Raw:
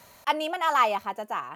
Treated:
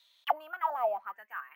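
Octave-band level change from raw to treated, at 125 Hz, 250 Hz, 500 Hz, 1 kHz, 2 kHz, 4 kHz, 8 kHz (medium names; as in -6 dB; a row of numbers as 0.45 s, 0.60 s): no reading, under -25 dB, -4.0 dB, -7.0 dB, -10.0 dB, -14.0 dB, under -25 dB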